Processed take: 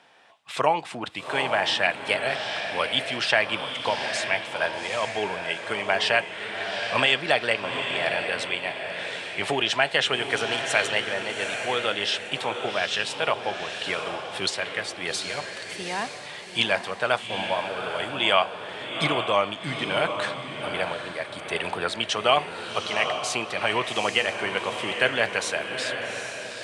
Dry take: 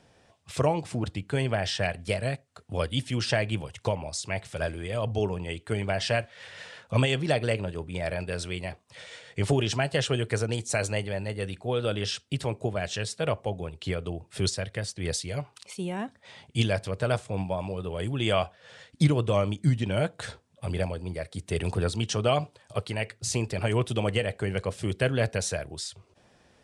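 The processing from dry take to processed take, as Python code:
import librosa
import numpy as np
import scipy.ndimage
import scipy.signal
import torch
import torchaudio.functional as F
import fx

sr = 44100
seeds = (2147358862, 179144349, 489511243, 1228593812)

y = scipy.signal.sosfilt(scipy.signal.butter(2, 270.0, 'highpass', fs=sr, output='sos'), x)
y = fx.band_shelf(y, sr, hz=1700.0, db=10.0, octaves=2.7)
y = fx.echo_diffused(y, sr, ms=808, feedback_pct=40, wet_db=-6.0)
y = y * 10.0 ** (-1.0 / 20.0)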